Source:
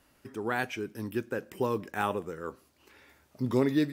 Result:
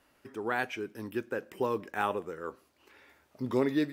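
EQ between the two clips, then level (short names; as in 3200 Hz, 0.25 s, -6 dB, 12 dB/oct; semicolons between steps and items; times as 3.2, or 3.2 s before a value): tone controls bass -7 dB, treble -5 dB; 0.0 dB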